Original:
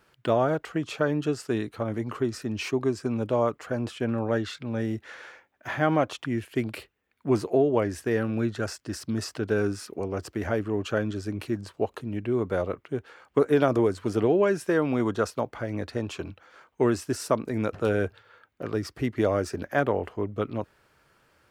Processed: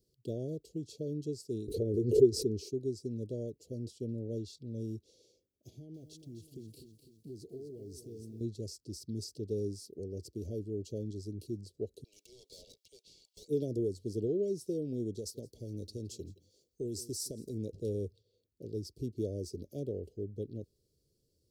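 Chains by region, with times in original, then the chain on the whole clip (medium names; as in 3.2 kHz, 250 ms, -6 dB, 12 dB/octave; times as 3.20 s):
1.68–2.69 s: bass shelf 90 Hz +9.5 dB + small resonant body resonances 420/1900 Hz, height 17 dB, ringing for 30 ms + swell ahead of each attack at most 85 dB/s
5.69–8.41 s: band-stop 550 Hz, Q 5.4 + compression 4:1, threshold -35 dBFS + bit-crushed delay 252 ms, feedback 55%, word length 10-bit, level -9 dB
12.04–13.48 s: high-pass 1 kHz 24 dB/octave + treble shelf 5.3 kHz -5 dB + overdrive pedal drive 26 dB, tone 5 kHz, clips at -24 dBFS
15.17–17.54 s: delay 167 ms -22.5 dB + compression 3:1, threshold -24 dBFS + treble shelf 4.1 kHz +8.5 dB
whole clip: elliptic band-stop 410–4500 Hz, stop band 70 dB; comb 1.8 ms, depth 30%; trim -8 dB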